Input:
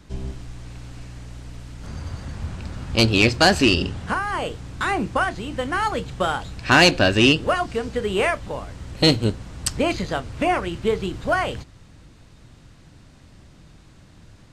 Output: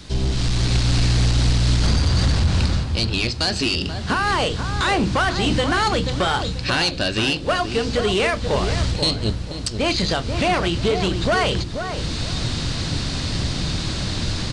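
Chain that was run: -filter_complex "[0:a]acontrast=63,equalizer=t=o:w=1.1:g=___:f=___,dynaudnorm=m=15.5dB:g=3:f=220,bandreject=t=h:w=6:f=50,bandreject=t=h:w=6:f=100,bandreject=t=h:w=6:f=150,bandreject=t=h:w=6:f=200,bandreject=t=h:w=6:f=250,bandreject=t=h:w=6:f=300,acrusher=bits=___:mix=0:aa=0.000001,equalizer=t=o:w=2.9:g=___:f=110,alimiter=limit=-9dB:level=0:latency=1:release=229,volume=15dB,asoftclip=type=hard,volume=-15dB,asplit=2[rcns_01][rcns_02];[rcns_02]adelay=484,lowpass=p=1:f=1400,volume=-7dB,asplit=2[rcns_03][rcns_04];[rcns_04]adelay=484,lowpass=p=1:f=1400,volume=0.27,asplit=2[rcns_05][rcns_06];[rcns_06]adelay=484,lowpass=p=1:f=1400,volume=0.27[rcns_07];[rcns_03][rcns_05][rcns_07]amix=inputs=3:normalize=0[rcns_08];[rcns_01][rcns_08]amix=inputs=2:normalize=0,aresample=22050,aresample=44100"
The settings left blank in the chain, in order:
12.5, 4300, 7, 2.5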